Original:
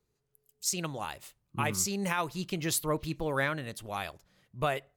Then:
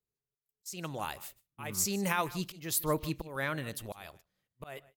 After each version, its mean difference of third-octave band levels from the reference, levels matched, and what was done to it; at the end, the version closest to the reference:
5.5 dB: volume swells 364 ms
parametric band 15,000 Hz +11 dB 0.53 octaves
on a send: single-tap delay 153 ms −19 dB
on the sum: noise gate −56 dBFS, range −16 dB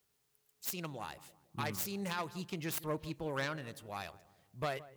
4.0 dB: phase distortion by the signal itself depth 0.15 ms
high-pass filter 51 Hz
bit-depth reduction 12 bits, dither triangular
on a send: feedback echo with a low-pass in the loop 165 ms, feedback 50%, low-pass 1,100 Hz, level −16.5 dB
on the sum: level −6.5 dB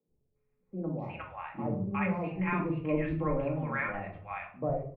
15.5 dB: Chebyshev low-pass filter 2,400 Hz, order 5
parametric band 1,500 Hz −6 dB 0.56 octaves
three-band delay without the direct sound mids, lows, highs 70/360 ms, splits 150/780 Hz
rectangular room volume 490 cubic metres, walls furnished, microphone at 2.2 metres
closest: second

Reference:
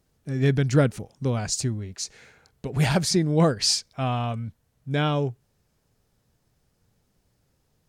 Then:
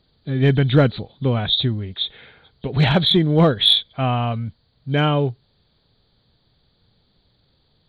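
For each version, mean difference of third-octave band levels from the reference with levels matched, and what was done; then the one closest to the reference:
3.5 dB: hearing-aid frequency compression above 3,000 Hz 4 to 1
in parallel at −6 dB: hard clipping −16 dBFS, distortion −14 dB
on the sum: level +2 dB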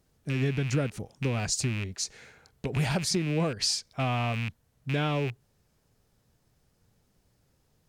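5.0 dB: loose part that buzzes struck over −29 dBFS, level −23 dBFS
downward compressor 4 to 1, threshold −25 dBFS, peak gain reduction 10 dB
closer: first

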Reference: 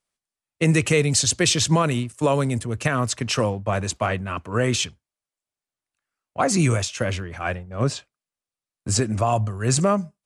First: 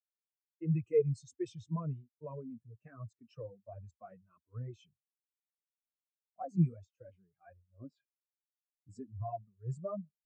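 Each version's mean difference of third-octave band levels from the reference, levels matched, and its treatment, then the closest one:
19.0 dB: reversed playback
upward compression, threshold −26 dBFS
reversed playback
flanger 1.3 Hz, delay 0.7 ms, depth 6.6 ms, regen +8%
every bin expanded away from the loudest bin 2.5 to 1
level −8 dB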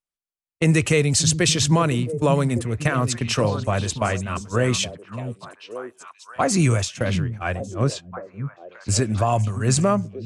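3.0 dB: noise gate −31 dBFS, range −13 dB
low-shelf EQ 62 Hz +9 dB
on a send: echo through a band-pass that steps 580 ms, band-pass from 170 Hz, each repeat 1.4 octaves, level −5.5 dB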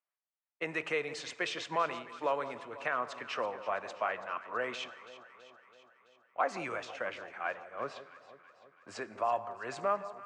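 9.5 dB: band-pass filter 700–2,000 Hz
delay that swaps between a low-pass and a high-pass 165 ms, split 1,100 Hz, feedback 77%, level −13 dB
dense smooth reverb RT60 1.3 s, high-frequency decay 0.8×, DRR 16.5 dB
level −6 dB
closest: second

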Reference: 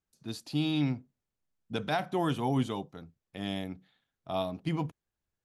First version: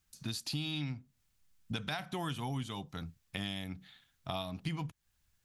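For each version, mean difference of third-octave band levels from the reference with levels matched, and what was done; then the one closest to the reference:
6.0 dB: parametric band 440 Hz −14 dB 2.5 octaves
downward compressor 6 to 1, threshold −50 dBFS, peak gain reduction 17.5 dB
level +14.5 dB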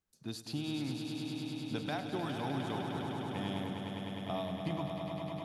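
9.5 dB: downward compressor, threshold −35 dBFS, peak gain reduction 11 dB
on a send: echo that builds up and dies away 102 ms, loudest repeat 5, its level −8 dB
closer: first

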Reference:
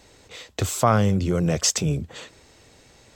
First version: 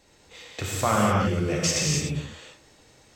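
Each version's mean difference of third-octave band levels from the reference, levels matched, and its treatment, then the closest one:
6.5 dB: dynamic equaliser 2,300 Hz, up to +8 dB, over −42 dBFS, Q 1.1
reverb whose tail is shaped and stops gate 330 ms flat, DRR −4 dB
level −8 dB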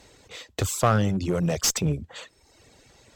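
2.5 dB: reverb reduction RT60 0.86 s
asymmetric clip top −22 dBFS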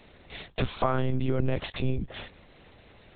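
9.0 dB: downward compressor 6 to 1, threshold −21 dBFS, peak gain reduction 8.5 dB
one-pitch LPC vocoder at 8 kHz 130 Hz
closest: second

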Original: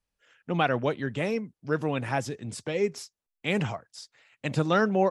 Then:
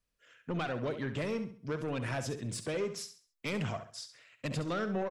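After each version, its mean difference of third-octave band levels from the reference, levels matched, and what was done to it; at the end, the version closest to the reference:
6.0 dB: notch filter 840 Hz, Q 5
downward compressor 6 to 1, threshold −27 dBFS, peak gain reduction 8.5 dB
soft clipping −28.5 dBFS, distortion −12 dB
on a send: repeating echo 67 ms, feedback 34%, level −10.5 dB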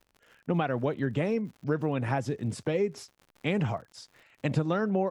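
3.5 dB: surface crackle 87 per second −43 dBFS
high-shelf EQ 2,500 Hz −8 dB
downward compressor 6 to 1, threshold −29 dBFS, peak gain reduction 10.5 dB
low-shelf EQ 490 Hz +3.5 dB
level +3 dB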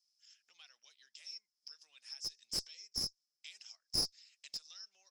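19.0 dB: downward compressor 5 to 1, threshold −40 dBFS, peak gain reduction 19.5 dB
four-pole ladder band-pass 5,400 Hz, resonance 85%
asymmetric clip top −51 dBFS
level +14.5 dB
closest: second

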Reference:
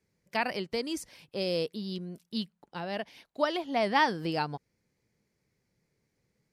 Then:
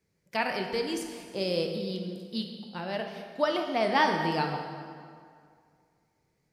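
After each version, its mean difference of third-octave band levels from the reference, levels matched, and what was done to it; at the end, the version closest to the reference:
6.0 dB: dense smooth reverb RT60 2.2 s, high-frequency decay 0.7×, DRR 3 dB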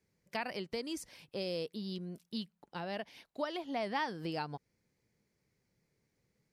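2.5 dB: downward compressor 2 to 1, threshold −36 dBFS, peak gain reduction 9 dB
level −2 dB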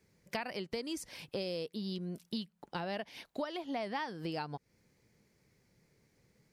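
4.5 dB: downward compressor 8 to 1, threshold −42 dBFS, peak gain reduction 21.5 dB
level +6.5 dB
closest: second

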